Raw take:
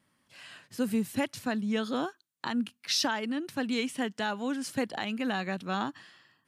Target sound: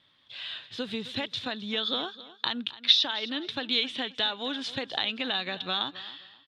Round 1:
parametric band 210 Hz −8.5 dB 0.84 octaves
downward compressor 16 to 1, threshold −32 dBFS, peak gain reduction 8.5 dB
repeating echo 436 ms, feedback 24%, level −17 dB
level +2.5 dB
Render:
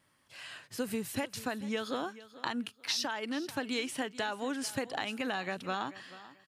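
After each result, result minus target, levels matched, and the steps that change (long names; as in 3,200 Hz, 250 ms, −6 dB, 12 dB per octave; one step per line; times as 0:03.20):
echo 172 ms late; 4,000 Hz band −6.5 dB
change: repeating echo 264 ms, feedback 24%, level −17 dB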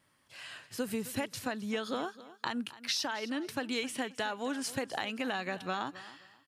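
4,000 Hz band −6.5 dB
add after downward compressor: low-pass with resonance 3,600 Hz, resonance Q 13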